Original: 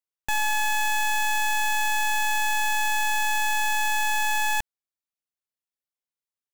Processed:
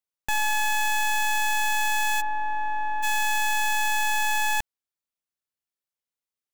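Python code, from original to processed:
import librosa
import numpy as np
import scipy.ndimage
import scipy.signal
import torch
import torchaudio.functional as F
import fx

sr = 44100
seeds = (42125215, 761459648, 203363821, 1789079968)

y = fx.cheby1_lowpass(x, sr, hz=1100.0, order=2, at=(2.2, 3.02), fade=0.02)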